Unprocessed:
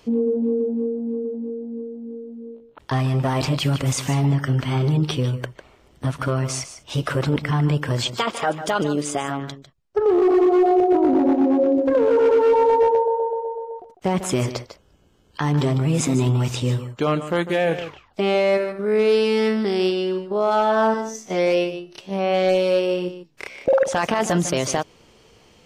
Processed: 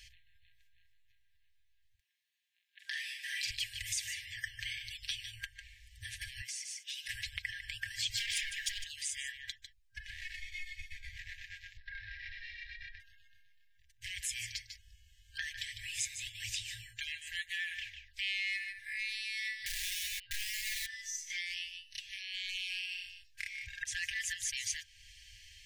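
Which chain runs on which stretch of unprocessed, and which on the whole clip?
1.95–3.51 brick-wall FIR high-pass 160 Hz + doubler 45 ms -4 dB
6.41–7.09 HPF 790 Hz 24 dB/oct + compressor 4:1, threshold -36 dBFS
8.1–8.84 hard clip -18 dBFS + sample leveller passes 1 + fast leveller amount 100%
10.36–11.17 comb 0.9 ms, depth 63% + ensemble effect
11.77–13 rippled Chebyshev low-pass 5400 Hz, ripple 9 dB + frequency shift +31 Hz + tube stage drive 16 dB, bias 0.55
19.66–20.86 steep low-pass 5100 Hz 96 dB/oct + compressor 5:1, threshold -22 dBFS + wrapped overs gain 24 dB
whole clip: FFT band-reject 110–1600 Hz; compressor 2:1, threshold -43 dBFS; comb 5.1 ms, depth 55%

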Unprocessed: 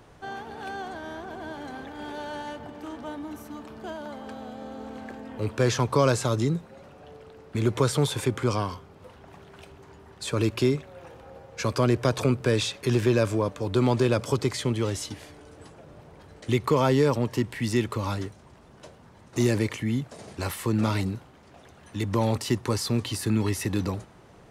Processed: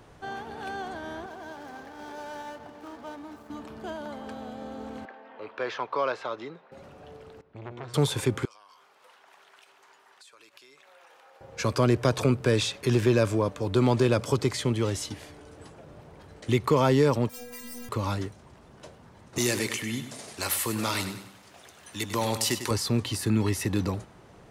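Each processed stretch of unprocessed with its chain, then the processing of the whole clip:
1.26–3.5 median filter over 15 samples + low shelf 410 Hz -10 dB
5.05–6.72 HPF 650 Hz + air absorption 320 m
7.41–7.94 LPF 3200 Hz + resonator 120 Hz, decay 1.4 s, mix 80% + core saturation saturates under 1000 Hz
8.45–11.41 HPF 1000 Hz + compressor 16:1, threshold -50 dBFS
17.29–17.89 infinite clipping + high shelf 7200 Hz +11 dB + metallic resonator 240 Hz, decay 0.79 s, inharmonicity 0.008
19.38–22.71 tilt +3 dB/oct + feedback echo 99 ms, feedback 43%, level -10.5 dB
whole clip: dry

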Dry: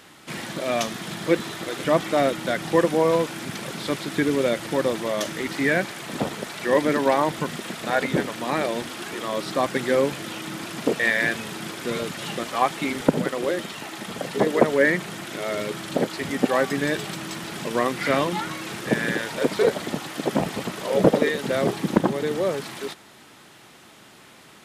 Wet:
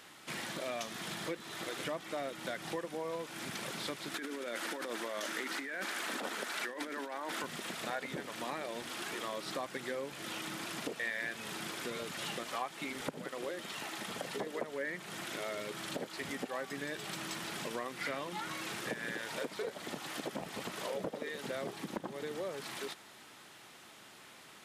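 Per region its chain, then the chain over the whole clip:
4.14–7.44 Chebyshev high-pass 240 Hz, order 3 + bell 1500 Hz +5.5 dB 0.59 oct + negative-ratio compressor -28 dBFS
whole clip: compressor 5:1, threshold -29 dBFS; low shelf 410 Hz -7 dB; gain -5 dB

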